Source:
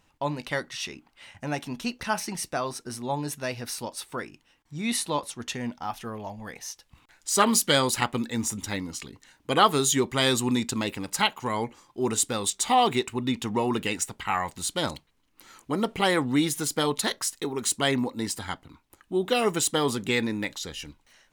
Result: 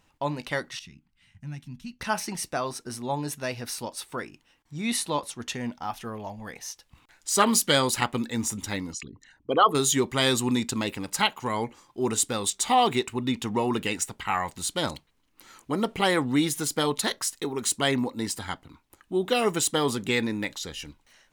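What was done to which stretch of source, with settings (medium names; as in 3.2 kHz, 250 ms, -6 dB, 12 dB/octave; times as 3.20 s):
0.79–2.01 s: FFT filter 180 Hz 0 dB, 490 Hz -28 dB, 2 kHz -14 dB
8.93–9.75 s: resonances exaggerated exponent 2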